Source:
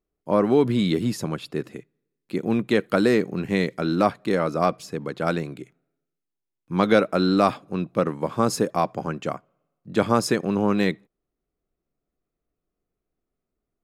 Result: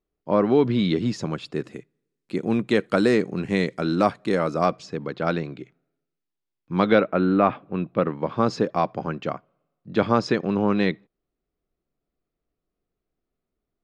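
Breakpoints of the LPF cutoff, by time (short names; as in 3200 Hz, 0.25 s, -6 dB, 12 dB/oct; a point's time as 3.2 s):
LPF 24 dB/oct
0.8 s 5200 Hz
1.73 s 9300 Hz
4.44 s 9300 Hz
5.05 s 5200 Hz
6.77 s 5200 Hz
7.27 s 2400 Hz
8.48 s 4900 Hz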